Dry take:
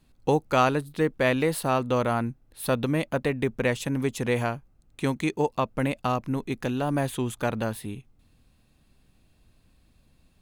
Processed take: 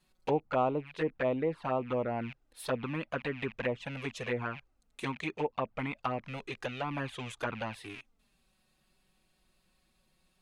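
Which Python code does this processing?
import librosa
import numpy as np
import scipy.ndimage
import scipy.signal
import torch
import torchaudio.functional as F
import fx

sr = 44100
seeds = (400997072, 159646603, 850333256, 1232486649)

y = fx.rattle_buzz(x, sr, strikes_db=-45.0, level_db=-30.0)
y = fx.low_shelf(y, sr, hz=350.0, db=-11.5)
y = fx.env_flanger(y, sr, rest_ms=5.5, full_db=-22.5)
y = fx.env_lowpass_down(y, sr, base_hz=1100.0, full_db=-27.5)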